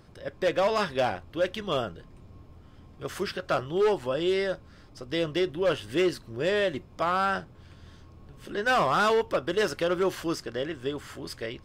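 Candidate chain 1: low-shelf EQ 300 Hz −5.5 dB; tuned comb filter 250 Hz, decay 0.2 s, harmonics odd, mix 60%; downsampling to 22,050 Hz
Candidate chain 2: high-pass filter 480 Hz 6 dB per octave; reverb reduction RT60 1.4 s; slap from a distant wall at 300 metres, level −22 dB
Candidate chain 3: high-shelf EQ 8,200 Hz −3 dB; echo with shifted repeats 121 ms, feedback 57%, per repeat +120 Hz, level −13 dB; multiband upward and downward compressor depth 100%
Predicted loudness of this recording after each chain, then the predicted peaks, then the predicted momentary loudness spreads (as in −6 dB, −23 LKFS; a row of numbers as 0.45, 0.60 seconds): −36.0, −31.0, −27.5 LKFS; −21.0, −15.0, −10.0 dBFS; 13, 12, 8 LU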